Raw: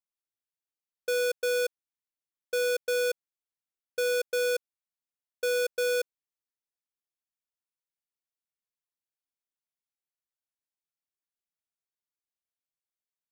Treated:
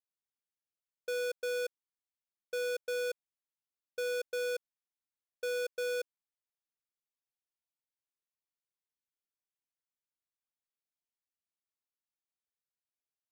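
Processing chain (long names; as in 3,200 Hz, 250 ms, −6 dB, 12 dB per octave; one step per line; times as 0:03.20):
high-shelf EQ 6,900 Hz −5 dB
level −7 dB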